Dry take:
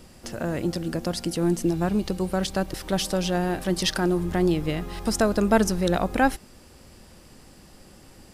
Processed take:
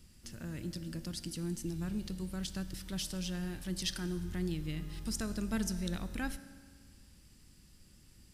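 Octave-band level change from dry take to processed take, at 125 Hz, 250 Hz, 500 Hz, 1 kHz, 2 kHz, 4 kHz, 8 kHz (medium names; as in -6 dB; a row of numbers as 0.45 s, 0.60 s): -10.5 dB, -13.0 dB, -21.0 dB, -23.0 dB, -15.0 dB, -10.5 dB, -9.5 dB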